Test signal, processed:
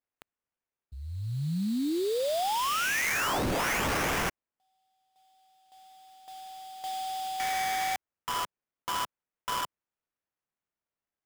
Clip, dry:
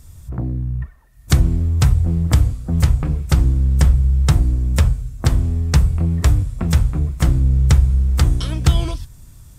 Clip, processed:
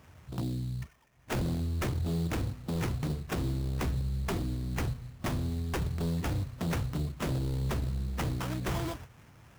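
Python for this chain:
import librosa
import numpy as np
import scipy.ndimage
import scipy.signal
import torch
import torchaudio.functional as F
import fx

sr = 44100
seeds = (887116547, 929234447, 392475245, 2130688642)

y = scipy.signal.sosfilt(scipy.signal.butter(2, 130.0, 'highpass', fs=sr, output='sos'), x)
y = fx.sample_hold(y, sr, seeds[0], rate_hz=4200.0, jitter_pct=20)
y = 10.0 ** (-19.0 / 20.0) * (np.abs((y / 10.0 ** (-19.0 / 20.0) + 3.0) % 4.0 - 2.0) - 1.0)
y = y * 10.0 ** (-6.5 / 20.0)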